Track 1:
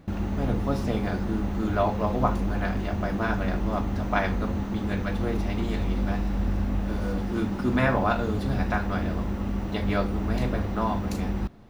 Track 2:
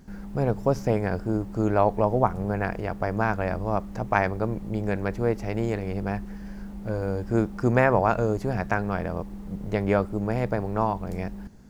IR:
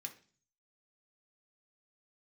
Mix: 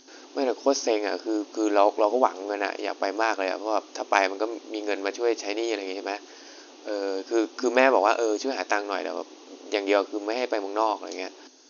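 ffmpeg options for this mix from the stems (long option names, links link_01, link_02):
-filter_complex "[0:a]volume=-18.5dB[link_01];[1:a]volume=-1,volume=1.5dB[link_02];[link_01][link_02]amix=inputs=2:normalize=0,afftfilt=real='re*between(b*sr/4096,250,6700)':imag='im*between(b*sr/4096,250,6700)':win_size=4096:overlap=0.75,aexciter=amount=4.4:drive=5.9:freq=2700"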